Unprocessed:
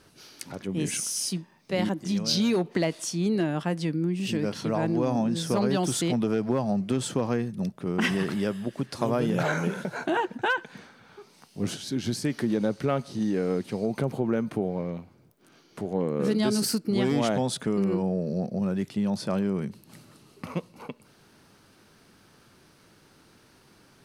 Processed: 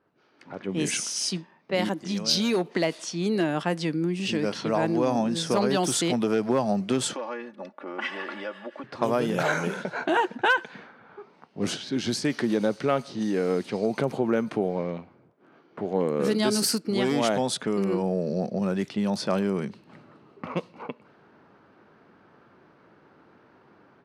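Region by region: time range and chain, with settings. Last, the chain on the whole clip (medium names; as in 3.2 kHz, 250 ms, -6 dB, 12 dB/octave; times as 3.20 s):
7.13–8.84 s: high-pass 520 Hz + comb 3.5 ms, depth 86% + compression 2.5:1, threshold -36 dBFS
whole clip: level-controlled noise filter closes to 1.3 kHz, open at -22 dBFS; high-pass 330 Hz 6 dB/octave; level rider gain up to 14 dB; trim -8 dB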